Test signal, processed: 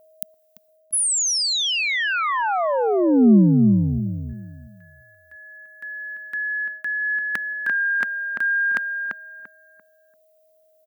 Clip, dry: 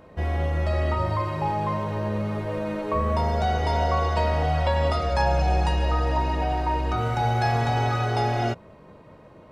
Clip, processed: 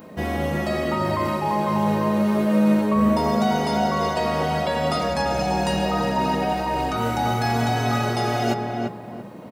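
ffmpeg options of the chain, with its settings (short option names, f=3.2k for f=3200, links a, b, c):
-filter_complex "[0:a]aemphasis=mode=production:type=bsi,aeval=exprs='clip(val(0),-1,0.355)':c=same,areverse,acompressor=threshold=-27dB:ratio=4,areverse,equalizer=f=210:t=o:w=1.1:g=14.5,aeval=exprs='val(0)+0.00158*sin(2*PI*630*n/s)':c=same,asplit=2[a][b];[b]adelay=342,lowpass=f=1.8k:p=1,volume=-3.5dB,asplit=2[c][d];[d]adelay=342,lowpass=f=1.8k:p=1,volume=0.29,asplit=2[e][f];[f]adelay=342,lowpass=f=1.8k:p=1,volume=0.29,asplit=2[g][h];[h]adelay=342,lowpass=f=1.8k:p=1,volume=0.29[i];[c][e][g][i]amix=inputs=4:normalize=0[j];[a][j]amix=inputs=2:normalize=0,volume=4.5dB"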